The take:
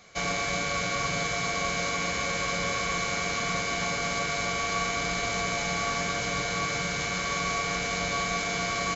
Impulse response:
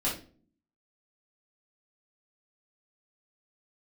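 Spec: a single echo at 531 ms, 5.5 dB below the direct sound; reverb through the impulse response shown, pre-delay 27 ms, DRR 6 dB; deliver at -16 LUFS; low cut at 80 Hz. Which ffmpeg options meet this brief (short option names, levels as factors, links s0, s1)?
-filter_complex "[0:a]highpass=80,aecho=1:1:531:0.531,asplit=2[s0][s1];[1:a]atrim=start_sample=2205,adelay=27[s2];[s1][s2]afir=irnorm=-1:irlink=0,volume=0.211[s3];[s0][s3]amix=inputs=2:normalize=0,volume=2.99"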